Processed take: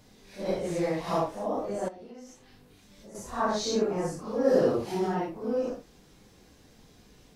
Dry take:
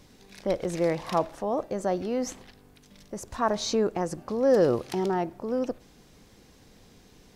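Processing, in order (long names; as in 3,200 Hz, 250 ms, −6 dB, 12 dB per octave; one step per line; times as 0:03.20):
random phases in long frames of 200 ms
0:01.88–0:03.15: downward compressor 4 to 1, threshold −45 dBFS, peak gain reduction 16.5 dB
level −1.5 dB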